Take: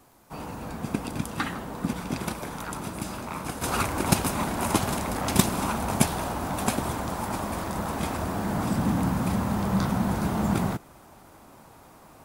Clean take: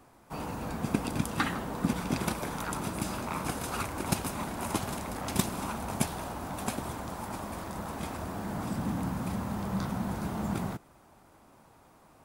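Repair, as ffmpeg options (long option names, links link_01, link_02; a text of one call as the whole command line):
ffmpeg -i in.wav -af "adeclick=threshold=4,agate=range=-21dB:threshold=-43dB,asetnsamples=nb_out_samples=441:pad=0,asendcmd='3.62 volume volume -7.5dB',volume=0dB" out.wav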